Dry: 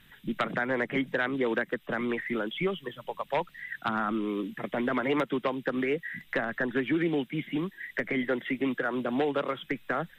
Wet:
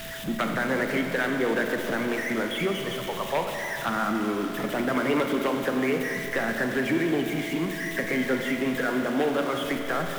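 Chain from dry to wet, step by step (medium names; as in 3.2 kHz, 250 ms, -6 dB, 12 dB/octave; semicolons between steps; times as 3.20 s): jump at every zero crossing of -33.5 dBFS; Schroeder reverb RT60 3.1 s, combs from 31 ms, DRR 3 dB; whistle 660 Hz -41 dBFS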